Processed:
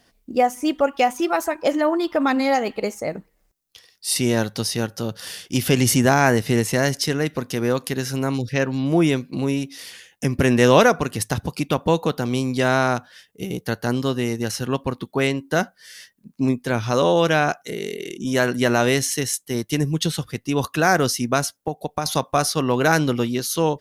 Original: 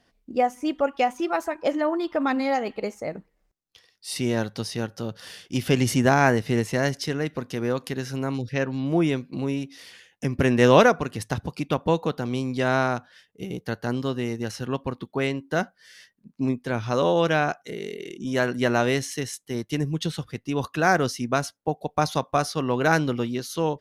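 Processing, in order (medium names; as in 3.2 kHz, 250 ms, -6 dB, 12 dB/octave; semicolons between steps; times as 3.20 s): treble shelf 6.8 kHz +11.5 dB; in parallel at -1 dB: peak limiter -14 dBFS, peak gain reduction 12 dB; 21.40–22.06 s: on the sum: compression 6:1, threshold -20 dBFS, peak gain reduction 8 dB; trim -1 dB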